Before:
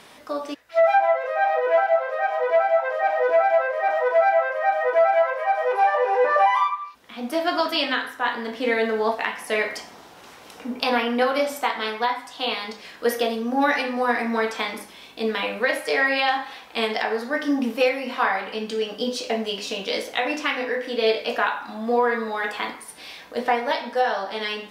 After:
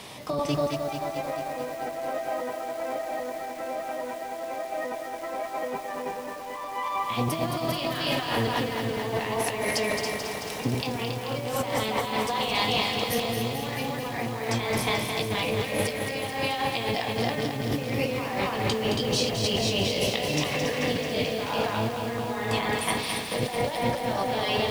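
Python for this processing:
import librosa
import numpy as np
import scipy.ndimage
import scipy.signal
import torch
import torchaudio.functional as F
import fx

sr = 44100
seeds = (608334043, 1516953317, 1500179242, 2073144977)

y = fx.octave_divider(x, sr, octaves=1, level_db=3.0)
y = fx.highpass(y, sr, hz=53.0, slope=6)
y = fx.low_shelf(y, sr, hz=230.0, db=-4.0)
y = fx.echo_feedback(y, sr, ms=277, feedback_pct=17, wet_db=-5.5)
y = fx.over_compress(y, sr, threshold_db=-30.0, ratio=-1.0)
y = fx.peak_eq(y, sr, hz=1500.0, db=-10.0, octaves=0.55)
y = fx.echo_crushed(y, sr, ms=218, feedback_pct=80, bits=7, wet_db=-6)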